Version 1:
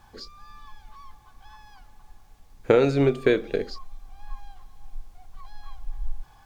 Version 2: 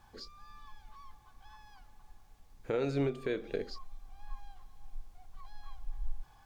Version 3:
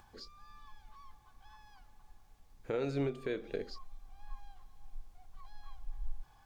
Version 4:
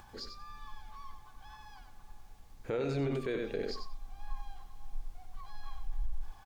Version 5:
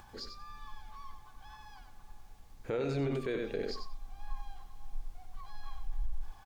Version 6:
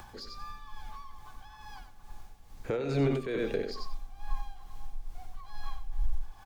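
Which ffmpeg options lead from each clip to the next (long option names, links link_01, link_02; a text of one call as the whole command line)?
ffmpeg -i in.wav -af "alimiter=limit=-16.5dB:level=0:latency=1:release=206,volume=-6.5dB" out.wav
ffmpeg -i in.wav -af "acompressor=mode=upward:threshold=-55dB:ratio=2.5,volume=-2.5dB" out.wav
ffmpeg -i in.wav -af "aecho=1:1:93|186:0.422|0.0633,alimiter=level_in=8dB:limit=-24dB:level=0:latency=1:release=20,volume=-8dB,volume=6dB" out.wav
ffmpeg -i in.wav -af anull out.wav
ffmpeg -i in.wav -filter_complex "[0:a]tremolo=f=2.3:d=0.56,acrossover=split=320|740|1600[link_01][link_02][link_03][link_04];[link_04]aeval=exprs='clip(val(0),-1,0.00562)':channel_layout=same[link_05];[link_01][link_02][link_03][link_05]amix=inputs=4:normalize=0,volume=6.5dB" out.wav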